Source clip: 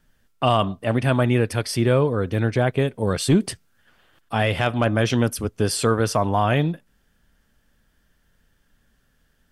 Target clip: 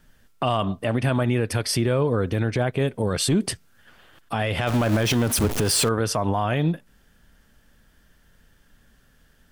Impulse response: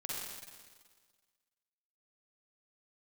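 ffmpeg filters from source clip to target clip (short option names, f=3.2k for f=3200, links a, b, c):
-filter_complex "[0:a]asettb=1/sr,asplit=3[a][b][c];[a]atrim=end=4.674[d];[b]atrim=start=4.67:end=5.89,asetpts=PTS-STARTPTS,afade=t=in:d=0.004:c=qsin,afade=t=out:st=1.216:d=0.004:c=qsin,aeval=exprs='val(0)+0.5*0.0668*sgn(val(0))':c=same[e];[c]atrim=start=5.886[f];[d][e]acrossfade=d=0.004:c1=hsin:c2=qsin[g];[g][f]acrossfade=d=0.004:c1=qsin:c2=hsin,asplit=2[h][i];[i]acompressor=threshold=-29dB:ratio=6,volume=0dB[j];[h][j]amix=inputs=2:normalize=0,alimiter=limit=-12.5dB:level=0:latency=1:release=73"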